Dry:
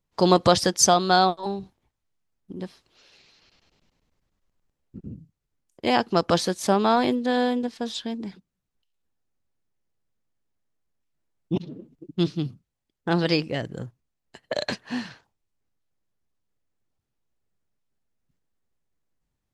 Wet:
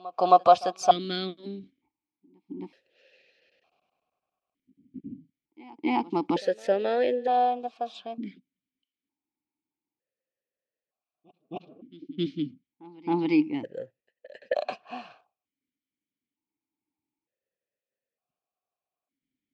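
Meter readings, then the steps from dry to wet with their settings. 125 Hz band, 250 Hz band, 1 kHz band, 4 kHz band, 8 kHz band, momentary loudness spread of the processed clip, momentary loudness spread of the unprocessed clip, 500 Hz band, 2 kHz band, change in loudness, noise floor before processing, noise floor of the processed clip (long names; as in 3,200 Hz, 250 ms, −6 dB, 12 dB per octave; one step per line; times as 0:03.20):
−12.0 dB, −4.5 dB, −0.5 dB, −10.5 dB, below −15 dB, 21 LU, 21 LU, −2.5 dB, −8.5 dB, −2.5 dB, −81 dBFS, below −85 dBFS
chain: backwards echo 268 ms −22 dB
formant filter that steps through the vowels 1.1 Hz
level +8 dB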